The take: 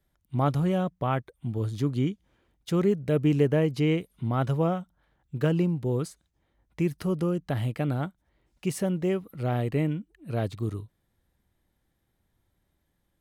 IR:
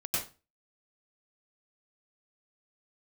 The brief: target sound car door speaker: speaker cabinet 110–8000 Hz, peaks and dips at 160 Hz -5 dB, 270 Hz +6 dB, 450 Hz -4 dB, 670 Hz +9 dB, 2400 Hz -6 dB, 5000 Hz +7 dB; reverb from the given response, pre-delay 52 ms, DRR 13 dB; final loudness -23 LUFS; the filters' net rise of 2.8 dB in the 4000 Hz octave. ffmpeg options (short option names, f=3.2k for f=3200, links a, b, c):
-filter_complex "[0:a]equalizer=f=4k:t=o:g=3.5,asplit=2[a][b];[1:a]atrim=start_sample=2205,adelay=52[c];[b][c]afir=irnorm=-1:irlink=0,volume=-18.5dB[d];[a][d]amix=inputs=2:normalize=0,highpass=110,equalizer=f=160:t=q:w=4:g=-5,equalizer=f=270:t=q:w=4:g=6,equalizer=f=450:t=q:w=4:g=-4,equalizer=f=670:t=q:w=4:g=9,equalizer=f=2.4k:t=q:w=4:g=-6,equalizer=f=5k:t=q:w=4:g=7,lowpass=f=8k:w=0.5412,lowpass=f=8k:w=1.3066,volume=4.5dB"